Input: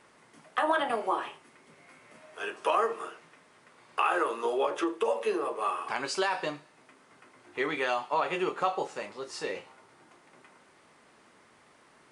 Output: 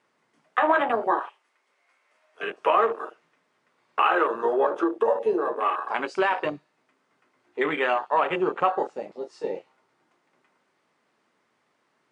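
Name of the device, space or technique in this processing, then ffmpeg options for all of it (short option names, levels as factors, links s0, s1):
over-cleaned archive recording: -filter_complex "[0:a]highpass=120,lowpass=7300,afwtdn=0.02,asettb=1/sr,asplit=3[s0][s1][s2];[s0]atrim=end=1.194[s3];[s1]atrim=start=1.19:end=2.35,asetpts=PTS-STARTPTS,afade=t=in:d=0.004:c=qsin,afade=t=out:st=1.156:d=0.004:c=qsin,highpass=620[s4];[s2]atrim=start=2.346[s5];[s3][s4]acrossfade=d=0.004:c1=hsin:c2=qsin[s6];[s6][s5]acrossfade=d=0.004:c1=qsin:c2=hsin,volume=2"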